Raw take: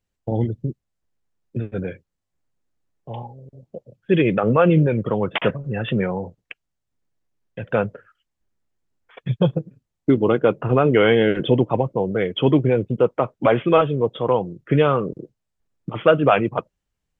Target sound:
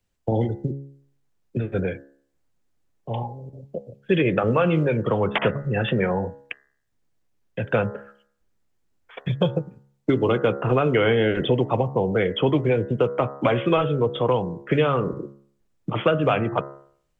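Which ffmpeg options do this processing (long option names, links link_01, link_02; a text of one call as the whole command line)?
ffmpeg -i in.wav -filter_complex "[0:a]bandreject=frequency=69.24:width_type=h:width=4,bandreject=frequency=138.48:width_type=h:width=4,bandreject=frequency=207.72:width_type=h:width=4,bandreject=frequency=276.96:width_type=h:width=4,bandreject=frequency=346.2:width_type=h:width=4,bandreject=frequency=415.44:width_type=h:width=4,bandreject=frequency=484.68:width_type=h:width=4,bandreject=frequency=553.92:width_type=h:width=4,bandreject=frequency=623.16:width_type=h:width=4,bandreject=frequency=692.4:width_type=h:width=4,bandreject=frequency=761.64:width_type=h:width=4,bandreject=frequency=830.88:width_type=h:width=4,bandreject=frequency=900.12:width_type=h:width=4,bandreject=frequency=969.36:width_type=h:width=4,bandreject=frequency=1038.6:width_type=h:width=4,bandreject=frequency=1107.84:width_type=h:width=4,bandreject=frequency=1177.08:width_type=h:width=4,bandreject=frequency=1246.32:width_type=h:width=4,bandreject=frequency=1315.56:width_type=h:width=4,bandreject=frequency=1384.8:width_type=h:width=4,bandreject=frequency=1454.04:width_type=h:width=4,bandreject=frequency=1523.28:width_type=h:width=4,bandreject=frequency=1592.52:width_type=h:width=4,bandreject=frequency=1661.76:width_type=h:width=4,bandreject=frequency=1731:width_type=h:width=4,bandreject=frequency=1800.24:width_type=h:width=4,bandreject=frequency=1869.48:width_type=h:width=4,bandreject=frequency=1938.72:width_type=h:width=4,bandreject=frequency=2007.96:width_type=h:width=4,acrossover=split=150|360|2100[link_01][link_02][link_03][link_04];[link_01]acompressor=threshold=-31dB:ratio=4[link_05];[link_02]acompressor=threshold=-35dB:ratio=4[link_06];[link_03]acompressor=threshold=-25dB:ratio=4[link_07];[link_04]acompressor=threshold=-36dB:ratio=4[link_08];[link_05][link_06][link_07][link_08]amix=inputs=4:normalize=0,volume=4.5dB" out.wav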